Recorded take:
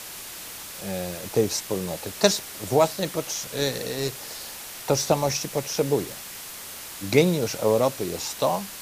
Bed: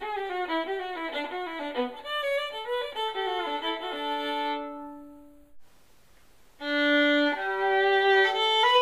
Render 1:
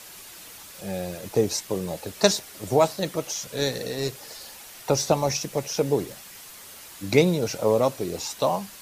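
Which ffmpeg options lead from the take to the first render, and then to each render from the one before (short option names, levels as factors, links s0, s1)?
-af "afftdn=nr=7:nf=-39"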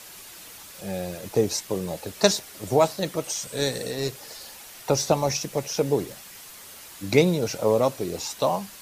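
-filter_complex "[0:a]asettb=1/sr,asplit=3[s0][s1][s2];[s0]atrim=end=3.244[s3];[s1]atrim=start=3.24:end=3.91,asetpts=PTS-STARTPTS,afade=t=in:d=0.004:c=qsin,afade=t=out:st=0.666:d=0.004:c=qsin,equalizer=f=8300:w=7.1:g=13[s4];[s2]atrim=start=3.906[s5];[s3][s4]acrossfade=d=0.004:c1=hsin:c2=qsin[s6];[s6][s5]acrossfade=d=0.004:c1=qsin:c2=hsin"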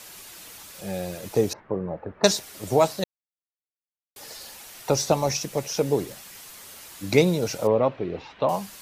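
-filter_complex "[0:a]asettb=1/sr,asplit=3[s0][s1][s2];[s0]atrim=end=1.534[s3];[s1]atrim=start=1.53:end=2.24,asetpts=PTS-STARTPTS,afade=t=in:d=0.004:c=qsin,afade=t=out:st=0.706:d=0.004:c=qsin,lowpass=f=1600:w=0.5412,lowpass=f=1600:w=1.3066[s4];[s2]atrim=start=2.236[s5];[s3][s4]acrossfade=d=0.004:c1=hsin:c2=qsin[s6];[s6][s5]acrossfade=d=0.004:c1=qsin:c2=hsin,asettb=1/sr,asplit=3[s7][s8][s9];[s7]atrim=end=7.674[s10];[s8]atrim=start=7.67:end=8.49,asetpts=PTS-STARTPTS,afade=t=in:d=0.004:c=qsin,afade=t=out:st=0.816:d=0.004:c=qsin,lowpass=f=2900:w=0.5412,lowpass=f=2900:w=1.3066[s11];[s9]atrim=start=8.486[s12];[s10][s11]acrossfade=d=0.004:c1=hsin:c2=qsin[s13];[s13][s12]acrossfade=d=0.004:c1=qsin:c2=hsin,asplit=3[s14][s15][s16];[s14]atrim=end=3.04,asetpts=PTS-STARTPTS,afade=t=out:st=3.036:d=0.004:c=hsin[s17];[s15]atrim=start=3.04:end=4.16,asetpts=PTS-STARTPTS,volume=0[s18];[s16]atrim=start=4.16,asetpts=PTS-STARTPTS,afade=t=in:d=0.004:c=hsin[s19];[s17][s18][s19]concat=n=3:v=0:a=1"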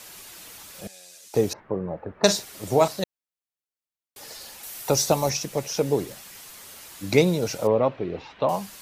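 -filter_complex "[0:a]asettb=1/sr,asplit=3[s0][s1][s2];[s0]atrim=end=0.874[s3];[s1]atrim=start=0.87:end=1.34,asetpts=PTS-STARTPTS,afade=t=in:d=0.004:c=qsin,afade=t=out:st=0.466:d=0.004:c=qsin,bandpass=f=6700:t=q:w=1.2[s4];[s2]atrim=start=1.336[s5];[s3][s4]acrossfade=d=0.004:c1=hsin:c2=qsin[s6];[s6][s5]acrossfade=d=0.004:c1=qsin:c2=hsin,asettb=1/sr,asplit=3[s7][s8][s9];[s7]atrim=end=2.144[s10];[s8]atrim=start=2.14:end=2.88,asetpts=PTS-STARTPTS,afade=t=in:d=0.004:c=qsin,afade=t=out:st=0.736:d=0.004:c=qsin,asplit=2[s11][s12];[s12]adelay=45,volume=0.251[s13];[s11][s13]amix=inputs=2:normalize=0,atrim=end_sample=32634[s14];[s9]atrim=start=2.876[s15];[s10][s14]acrossfade=d=0.004:c1=hsin:c2=qsin[s16];[s16][s15]acrossfade=d=0.004:c1=qsin:c2=hsin,asettb=1/sr,asplit=3[s17][s18][s19];[s17]atrim=end=4.634[s20];[s18]atrim=start=4.63:end=5.3,asetpts=PTS-STARTPTS,afade=t=in:d=0.004:c=qsin,afade=t=out:st=0.666:d=0.004:c=qsin,highshelf=f=7700:g=10.5[s21];[s19]atrim=start=5.296[s22];[s20][s21]acrossfade=d=0.004:c1=hsin:c2=qsin[s23];[s23][s22]acrossfade=d=0.004:c1=qsin:c2=hsin"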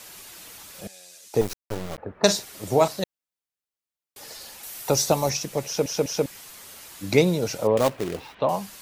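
-filter_complex "[0:a]asettb=1/sr,asplit=3[s0][s1][s2];[s0]atrim=end=1.414[s3];[s1]atrim=start=1.41:end=1.98,asetpts=PTS-STARTPTS,afade=t=in:d=0.004:c=qsin,afade=t=out:st=0.566:d=0.004:c=qsin,acrusher=bits=3:dc=4:mix=0:aa=0.000001[s4];[s2]atrim=start=1.976[s5];[s3][s4]acrossfade=d=0.004:c1=hsin:c2=qsin[s6];[s6][s5]acrossfade=d=0.004:c1=qsin:c2=hsin,asettb=1/sr,asplit=3[s7][s8][s9];[s7]atrim=end=7.774[s10];[s8]atrim=start=7.77:end=8.35,asetpts=PTS-STARTPTS,afade=t=in:d=0.004:c=qsin,afade=t=out:st=0.576:d=0.004:c=qsin,acrusher=bits=2:mode=log:mix=0:aa=0.000001[s11];[s9]atrim=start=8.346[s12];[s10][s11]acrossfade=d=0.004:c1=hsin:c2=qsin[s13];[s13][s12]acrossfade=d=0.004:c1=qsin:c2=hsin,asplit=4[s14][s15][s16][s17];[s14]atrim=end=5.862[s18];[s15]atrim=start=5.658:end=5.862[s19];[s16]atrim=start=5.658:end=5.862[s20];[s17]atrim=start=6.258[s21];[s18][s19]acrossfade=d=0.004:c1=hsin:c2=hsin[s22];[s22][s20]acrossfade=d=0.004:c1=hsin:c2=hsin[s23];[s23][s21]acrossfade=d=0.004:c1=hsin:c2=hsin"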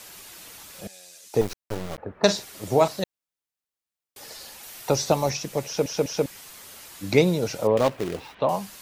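-filter_complex "[0:a]acrossover=split=5600[s0][s1];[s1]acompressor=threshold=0.01:ratio=4:attack=1:release=60[s2];[s0][s2]amix=inputs=2:normalize=0"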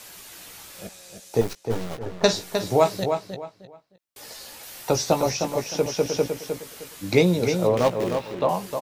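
-filter_complex "[0:a]asplit=2[s0][s1];[s1]adelay=17,volume=0.398[s2];[s0][s2]amix=inputs=2:normalize=0,asplit=2[s3][s4];[s4]adelay=308,lowpass=f=4300:p=1,volume=0.473,asplit=2[s5][s6];[s6]adelay=308,lowpass=f=4300:p=1,volume=0.26,asplit=2[s7][s8];[s8]adelay=308,lowpass=f=4300:p=1,volume=0.26[s9];[s3][s5][s7][s9]amix=inputs=4:normalize=0"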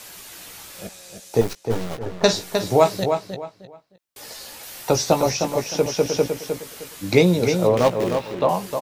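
-af "volume=1.41,alimiter=limit=0.891:level=0:latency=1"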